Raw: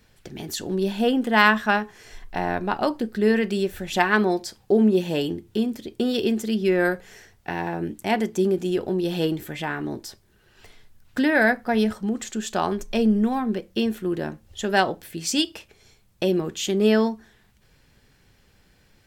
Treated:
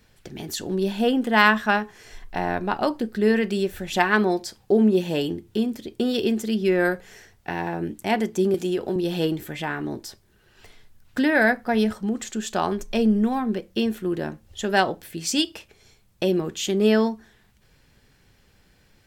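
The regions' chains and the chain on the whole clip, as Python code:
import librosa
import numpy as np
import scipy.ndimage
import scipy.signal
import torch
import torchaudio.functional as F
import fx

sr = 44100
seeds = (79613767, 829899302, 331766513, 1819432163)

y = fx.chain(x, sr, fx.low_shelf(hz=150.0, db=-7.5),
    fx.band_squash(depth_pct=100), at=(8.54, 8.96))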